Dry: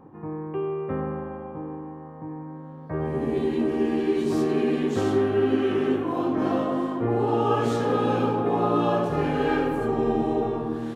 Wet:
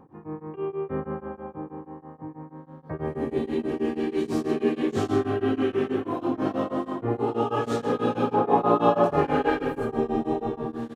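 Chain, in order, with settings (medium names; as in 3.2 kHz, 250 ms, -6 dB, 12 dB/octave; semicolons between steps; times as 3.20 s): 4.63–5.63 s: doubling 22 ms -4 dB; 8.33–9.50 s: peaking EQ 850 Hz +7 dB 2.3 oct; delay 125 ms -11 dB; tremolo of two beating tones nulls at 6.2 Hz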